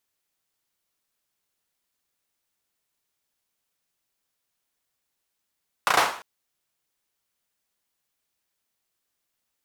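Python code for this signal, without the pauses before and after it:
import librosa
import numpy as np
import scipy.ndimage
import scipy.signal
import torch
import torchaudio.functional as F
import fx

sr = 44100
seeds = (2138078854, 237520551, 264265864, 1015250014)

y = fx.drum_clap(sr, seeds[0], length_s=0.35, bursts=4, spacing_ms=34, hz=970.0, decay_s=0.48)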